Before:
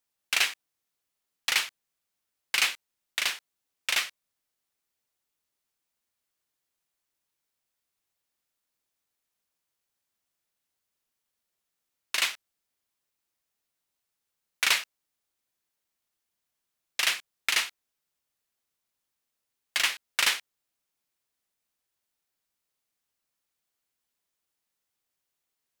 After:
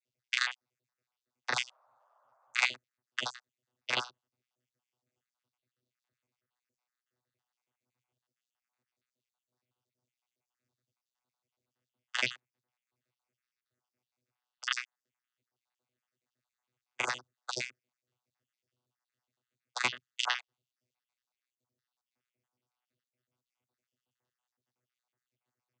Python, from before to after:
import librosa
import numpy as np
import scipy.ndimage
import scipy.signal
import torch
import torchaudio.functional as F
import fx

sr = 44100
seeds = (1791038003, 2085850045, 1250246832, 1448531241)

y = fx.spec_dropout(x, sr, seeds[0], share_pct=65)
y = fx.vocoder(y, sr, bands=16, carrier='saw', carrier_hz=124.0)
y = fx.dmg_noise_band(y, sr, seeds[1], low_hz=570.0, high_hz=1300.0, level_db=-70.0, at=(1.53, 2.66), fade=0.02)